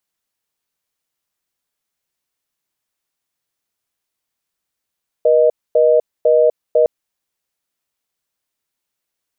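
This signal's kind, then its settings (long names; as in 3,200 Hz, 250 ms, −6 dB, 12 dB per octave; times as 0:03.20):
call progress tone reorder tone, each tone −11.5 dBFS 1.61 s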